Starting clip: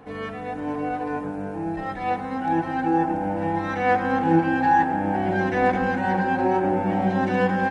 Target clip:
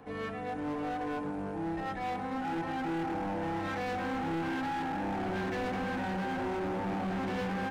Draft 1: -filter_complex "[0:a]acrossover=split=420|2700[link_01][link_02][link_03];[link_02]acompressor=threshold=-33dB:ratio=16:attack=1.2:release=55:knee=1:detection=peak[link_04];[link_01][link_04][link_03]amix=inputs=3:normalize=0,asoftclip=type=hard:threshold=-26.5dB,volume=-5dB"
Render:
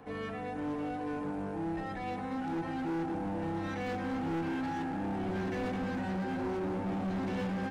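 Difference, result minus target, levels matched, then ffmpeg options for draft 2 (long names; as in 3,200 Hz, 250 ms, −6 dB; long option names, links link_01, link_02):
downward compressor: peak gain reduction +7.5 dB
-filter_complex "[0:a]acrossover=split=420|2700[link_01][link_02][link_03];[link_02]acompressor=threshold=-25dB:ratio=16:attack=1.2:release=55:knee=1:detection=peak[link_04];[link_01][link_04][link_03]amix=inputs=3:normalize=0,asoftclip=type=hard:threshold=-26.5dB,volume=-5dB"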